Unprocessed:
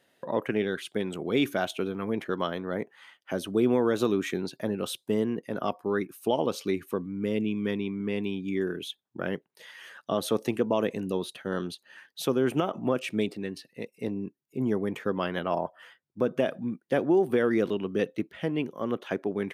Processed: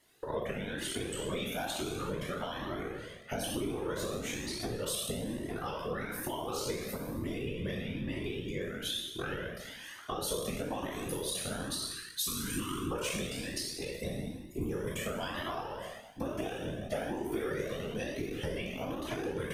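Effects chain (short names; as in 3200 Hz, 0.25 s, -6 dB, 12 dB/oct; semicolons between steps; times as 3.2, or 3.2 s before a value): spectral trails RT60 1.11 s; tone controls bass +2 dB, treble +9 dB, from 10.91 s treble +15 dB; 11.93–12.92 spectral gain 350–1000 Hz -30 dB; compressor, threshold -27 dBFS, peak gain reduction 10 dB; whisperiser; cascading flanger rising 1.1 Hz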